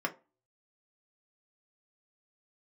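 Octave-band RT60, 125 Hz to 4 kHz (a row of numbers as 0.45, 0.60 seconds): 0.30, 0.35, 0.30, 0.30, 0.25, 0.15 seconds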